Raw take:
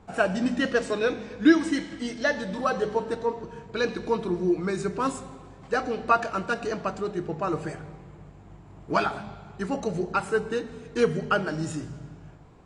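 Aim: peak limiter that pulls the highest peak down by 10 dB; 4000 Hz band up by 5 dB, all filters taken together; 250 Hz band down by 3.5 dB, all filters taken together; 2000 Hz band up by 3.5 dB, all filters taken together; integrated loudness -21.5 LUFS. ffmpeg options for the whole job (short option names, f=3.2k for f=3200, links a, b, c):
-af "equalizer=f=250:t=o:g=-5,equalizer=f=2k:t=o:g=4,equalizer=f=4k:t=o:g=5,volume=8.5dB,alimiter=limit=-8.5dB:level=0:latency=1"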